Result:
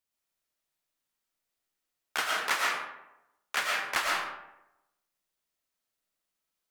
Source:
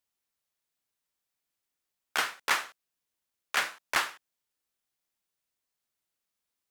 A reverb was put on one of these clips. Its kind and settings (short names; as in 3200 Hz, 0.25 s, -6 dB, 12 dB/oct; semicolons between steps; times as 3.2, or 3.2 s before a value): digital reverb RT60 0.91 s, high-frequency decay 0.55×, pre-delay 75 ms, DRR -2 dB; gain -2.5 dB